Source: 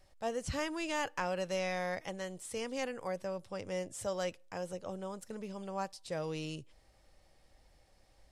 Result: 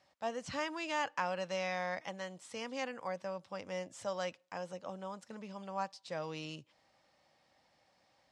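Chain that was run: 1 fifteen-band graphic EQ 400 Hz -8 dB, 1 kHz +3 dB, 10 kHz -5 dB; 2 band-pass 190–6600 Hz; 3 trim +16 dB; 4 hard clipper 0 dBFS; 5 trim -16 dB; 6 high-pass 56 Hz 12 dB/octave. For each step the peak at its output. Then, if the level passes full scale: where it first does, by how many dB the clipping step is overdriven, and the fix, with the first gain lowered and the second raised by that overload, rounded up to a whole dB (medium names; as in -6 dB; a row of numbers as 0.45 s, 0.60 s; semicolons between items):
-19.5 dBFS, -20.0 dBFS, -4.0 dBFS, -4.0 dBFS, -20.0 dBFS, -20.0 dBFS; nothing clips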